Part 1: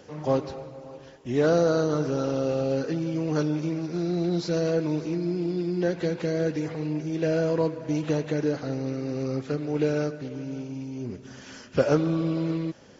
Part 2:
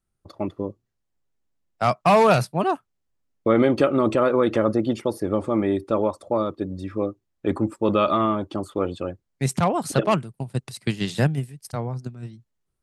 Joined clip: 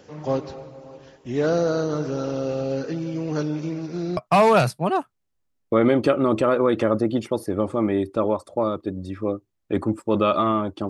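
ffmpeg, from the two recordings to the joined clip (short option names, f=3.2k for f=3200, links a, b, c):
-filter_complex "[0:a]apad=whole_dur=10.89,atrim=end=10.89,atrim=end=4.172[a];[1:a]atrim=start=1.908:end=8.63[b];[a][b]acrossfade=d=0.004:c1=hsin:c2=hsin"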